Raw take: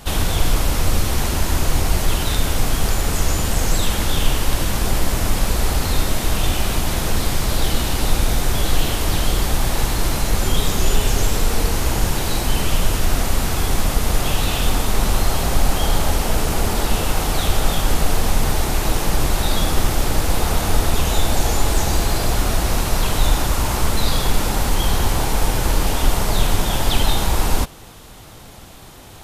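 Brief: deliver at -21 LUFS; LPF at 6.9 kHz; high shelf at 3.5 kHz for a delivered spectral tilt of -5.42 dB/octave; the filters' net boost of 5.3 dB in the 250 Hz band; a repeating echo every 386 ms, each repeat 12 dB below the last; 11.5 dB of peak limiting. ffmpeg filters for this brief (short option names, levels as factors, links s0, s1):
-af "lowpass=6900,equalizer=f=250:t=o:g=7,highshelf=f=3500:g=-9,alimiter=limit=0.2:level=0:latency=1,aecho=1:1:386|772|1158:0.251|0.0628|0.0157,volume=1.68"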